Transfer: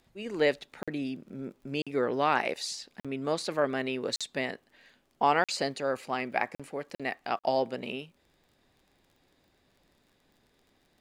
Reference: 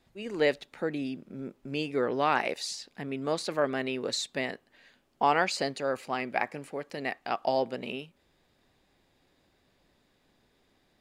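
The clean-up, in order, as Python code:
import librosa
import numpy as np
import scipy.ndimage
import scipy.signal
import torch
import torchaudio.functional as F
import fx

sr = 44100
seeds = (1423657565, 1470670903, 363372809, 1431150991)

y = fx.fix_declick_ar(x, sr, threshold=6.5)
y = fx.fix_interpolate(y, sr, at_s=(0.83, 1.82, 3.0, 4.16, 5.44, 6.55, 6.95, 7.39), length_ms=46.0)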